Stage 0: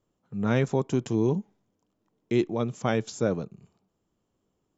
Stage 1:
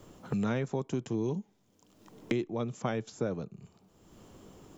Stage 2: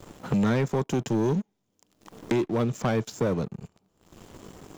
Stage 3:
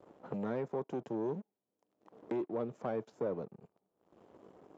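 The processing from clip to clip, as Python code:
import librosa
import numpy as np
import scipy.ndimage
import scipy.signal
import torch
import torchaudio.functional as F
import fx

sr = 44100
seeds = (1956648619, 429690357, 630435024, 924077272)

y1 = fx.band_squash(x, sr, depth_pct=100)
y1 = F.gain(torch.from_numpy(y1), -7.0).numpy()
y2 = fx.leveller(y1, sr, passes=3)
y2 = F.gain(torch.from_numpy(y2), -1.0).numpy()
y3 = fx.bandpass_q(y2, sr, hz=550.0, q=1.0)
y3 = F.gain(torch.from_numpy(y3), -7.5).numpy()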